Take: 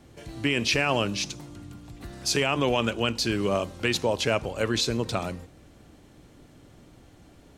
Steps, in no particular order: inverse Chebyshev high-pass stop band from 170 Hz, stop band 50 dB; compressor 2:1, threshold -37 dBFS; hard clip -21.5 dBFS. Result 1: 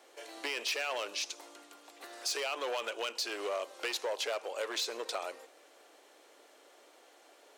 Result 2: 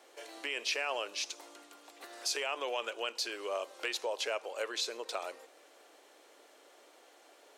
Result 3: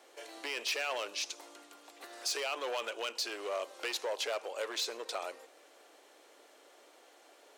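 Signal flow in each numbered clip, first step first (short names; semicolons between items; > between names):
hard clip > inverse Chebyshev high-pass > compressor; compressor > hard clip > inverse Chebyshev high-pass; hard clip > compressor > inverse Chebyshev high-pass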